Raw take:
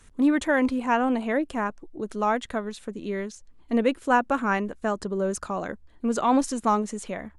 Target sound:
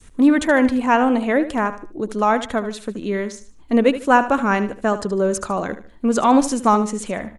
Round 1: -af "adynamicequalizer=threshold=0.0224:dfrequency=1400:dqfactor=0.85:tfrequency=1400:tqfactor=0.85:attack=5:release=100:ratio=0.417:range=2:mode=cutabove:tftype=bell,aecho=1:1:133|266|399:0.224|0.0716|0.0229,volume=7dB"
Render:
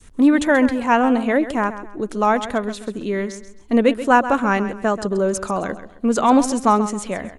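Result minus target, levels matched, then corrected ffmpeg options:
echo 58 ms late
-af "adynamicequalizer=threshold=0.0224:dfrequency=1400:dqfactor=0.85:tfrequency=1400:tqfactor=0.85:attack=5:release=100:ratio=0.417:range=2:mode=cutabove:tftype=bell,aecho=1:1:75|150|225:0.224|0.0716|0.0229,volume=7dB"

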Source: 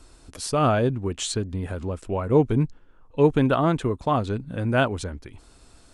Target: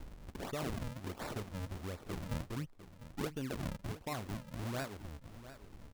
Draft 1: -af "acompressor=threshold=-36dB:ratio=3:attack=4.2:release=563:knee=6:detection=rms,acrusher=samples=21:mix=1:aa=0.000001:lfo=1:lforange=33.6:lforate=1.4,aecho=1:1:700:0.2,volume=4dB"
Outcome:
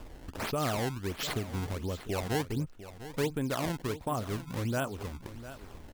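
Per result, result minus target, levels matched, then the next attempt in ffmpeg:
compressor: peak gain reduction -7.5 dB; decimation with a swept rate: distortion -9 dB
-af "acompressor=threshold=-47.5dB:ratio=3:attack=4.2:release=563:knee=6:detection=rms,acrusher=samples=21:mix=1:aa=0.000001:lfo=1:lforange=33.6:lforate=1.4,aecho=1:1:700:0.2,volume=4dB"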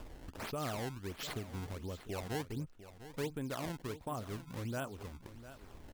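decimation with a swept rate: distortion -9 dB
-af "acompressor=threshold=-47.5dB:ratio=3:attack=4.2:release=563:knee=6:detection=rms,acrusher=samples=68:mix=1:aa=0.000001:lfo=1:lforange=109:lforate=1.4,aecho=1:1:700:0.2,volume=4dB"

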